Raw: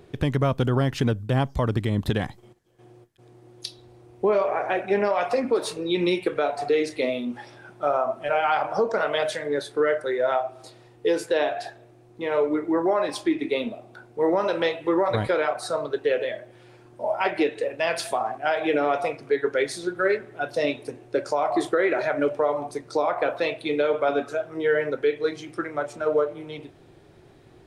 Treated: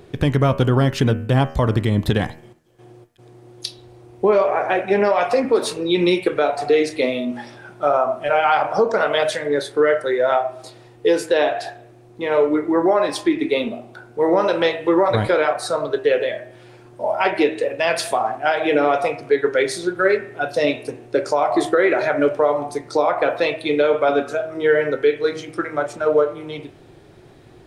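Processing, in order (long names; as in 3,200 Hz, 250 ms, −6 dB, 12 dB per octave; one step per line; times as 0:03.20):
hum removal 79.41 Hz, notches 39
level +6 dB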